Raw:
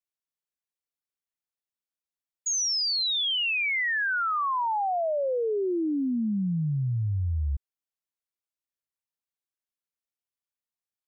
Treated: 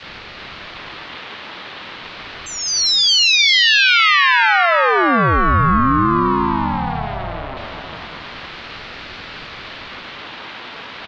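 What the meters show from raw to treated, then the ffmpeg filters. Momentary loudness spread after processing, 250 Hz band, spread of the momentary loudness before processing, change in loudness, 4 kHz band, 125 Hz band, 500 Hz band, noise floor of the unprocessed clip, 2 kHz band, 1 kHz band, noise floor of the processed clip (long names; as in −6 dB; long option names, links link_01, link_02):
22 LU, +9.0 dB, 5 LU, +13.0 dB, +14.0 dB, +6.0 dB, +7.0 dB, below −85 dBFS, +14.5 dB, +14.5 dB, −34 dBFS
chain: -filter_complex "[0:a]aeval=exprs='val(0)+0.5*0.00447*sgn(val(0))':channel_layout=same,highpass=frequency=400:width_type=q:width=0.5412,highpass=frequency=400:width_type=q:width=1.307,lowpass=frequency=3500:width_type=q:width=0.5176,lowpass=frequency=3500:width_type=q:width=0.7071,lowpass=frequency=3500:width_type=q:width=1.932,afreqshift=100,apsyclip=28.5dB,equalizer=frequency=2600:width_type=o:width=1.2:gain=-3.5,acompressor=threshold=-19dB:ratio=4,asplit=2[link_01][link_02];[link_02]aecho=0:1:398|796|1194|1592|1990:0.473|0.189|0.0757|0.0303|0.0121[link_03];[link_01][link_03]amix=inputs=2:normalize=0,adynamicequalizer=threshold=0.0562:dfrequency=820:dqfactor=0.78:tfrequency=820:tqfactor=0.78:attack=5:release=100:ratio=0.375:range=1.5:mode=cutabove:tftype=bell,asplit=2[link_04][link_05];[link_05]aecho=0:1:619:0.447[link_06];[link_04][link_06]amix=inputs=2:normalize=0,aeval=exprs='val(0)*sin(2*PI*510*n/s+510*0.35/0.33*sin(2*PI*0.33*n/s))':channel_layout=same,volume=6.5dB"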